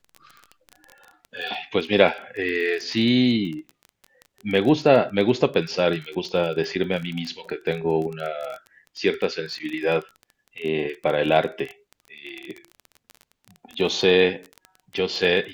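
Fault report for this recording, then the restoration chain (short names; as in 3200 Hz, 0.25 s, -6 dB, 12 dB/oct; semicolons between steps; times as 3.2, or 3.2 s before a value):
crackle 23/s -29 dBFS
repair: de-click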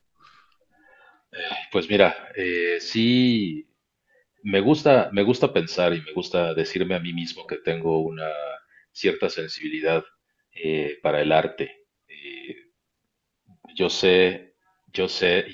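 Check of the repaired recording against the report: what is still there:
none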